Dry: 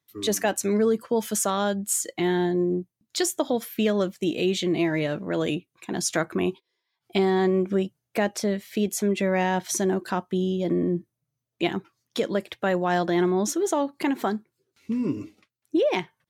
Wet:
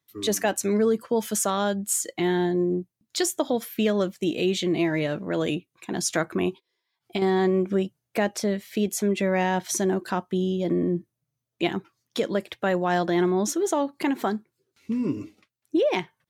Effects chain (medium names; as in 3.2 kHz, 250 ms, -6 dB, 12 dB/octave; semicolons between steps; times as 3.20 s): 6.48–7.22 s: compression 4:1, threshold -25 dBFS, peak gain reduction 6.5 dB